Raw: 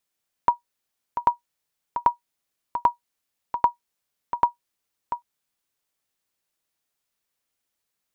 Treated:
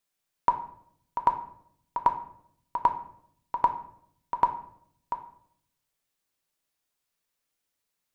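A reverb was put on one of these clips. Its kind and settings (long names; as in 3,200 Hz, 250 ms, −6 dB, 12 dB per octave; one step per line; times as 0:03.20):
rectangular room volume 130 cubic metres, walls mixed, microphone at 0.41 metres
level −2 dB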